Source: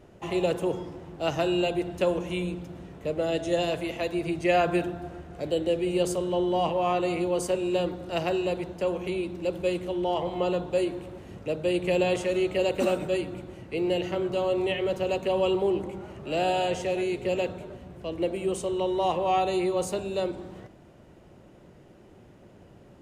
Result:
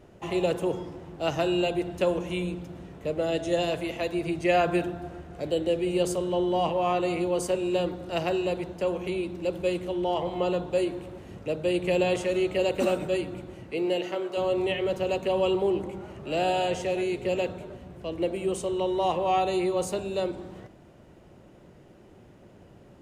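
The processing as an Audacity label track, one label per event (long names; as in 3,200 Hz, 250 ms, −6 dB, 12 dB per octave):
13.710000	14.360000	high-pass filter 150 Hz → 480 Hz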